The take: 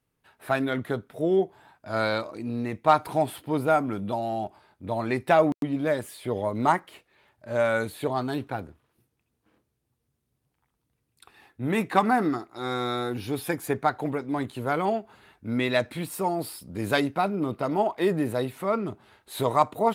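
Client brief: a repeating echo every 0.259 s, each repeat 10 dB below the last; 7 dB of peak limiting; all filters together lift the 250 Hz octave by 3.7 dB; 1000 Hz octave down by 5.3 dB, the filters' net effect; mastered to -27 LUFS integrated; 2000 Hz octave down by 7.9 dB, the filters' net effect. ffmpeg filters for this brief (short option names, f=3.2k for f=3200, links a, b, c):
-af "equalizer=f=250:t=o:g=5,equalizer=f=1k:t=o:g=-6,equalizer=f=2k:t=o:g=-8.5,alimiter=limit=-16.5dB:level=0:latency=1,aecho=1:1:259|518|777|1036:0.316|0.101|0.0324|0.0104,volume=1dB"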